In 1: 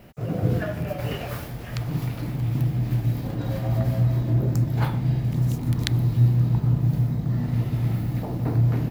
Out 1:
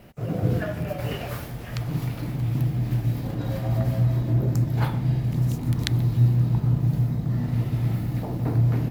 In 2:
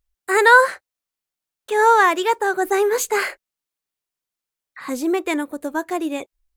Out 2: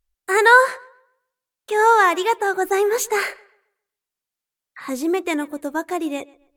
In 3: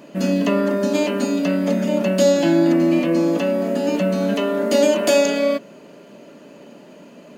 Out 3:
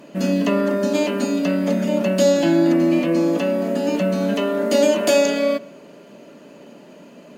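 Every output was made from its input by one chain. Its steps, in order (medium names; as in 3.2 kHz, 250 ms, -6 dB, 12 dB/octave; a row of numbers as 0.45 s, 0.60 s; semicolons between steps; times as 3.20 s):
filtered feedback delay 134 ms, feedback 30%, low-pass 4.1 kHz, level -23 dB; MP3 96 kbps 48 kHz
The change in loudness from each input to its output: -0.5 LU, -0.5 LU, -0.5 LU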